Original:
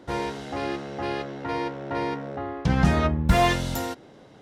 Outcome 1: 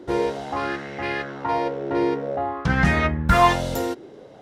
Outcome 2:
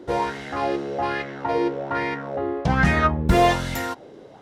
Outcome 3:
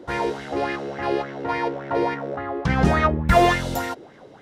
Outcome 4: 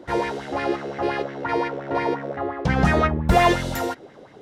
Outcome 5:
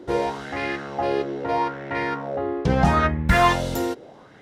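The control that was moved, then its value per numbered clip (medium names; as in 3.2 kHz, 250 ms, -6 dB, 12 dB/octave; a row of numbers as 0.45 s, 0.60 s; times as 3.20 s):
sweeping bell, rate: 0.5 Hz, 1.2 Hz, 3.5 Hz, 5.7 Hz, 0.78 Hz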